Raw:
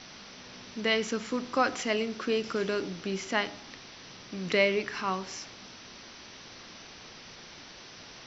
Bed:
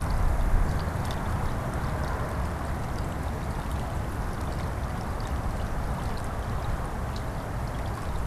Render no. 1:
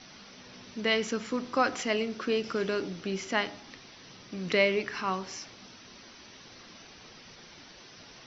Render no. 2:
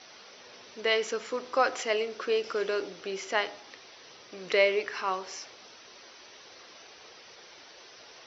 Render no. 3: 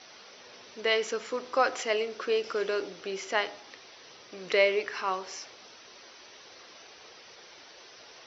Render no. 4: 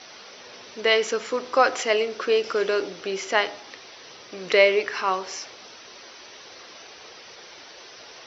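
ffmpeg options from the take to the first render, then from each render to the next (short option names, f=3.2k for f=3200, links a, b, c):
-af "afftdn=nr=6:nf=-49"
-af "highpass=47,lowshelf=f=310:t=q:w=1.5:g=-11.5"
-af anull
-af "volume=6.5dB"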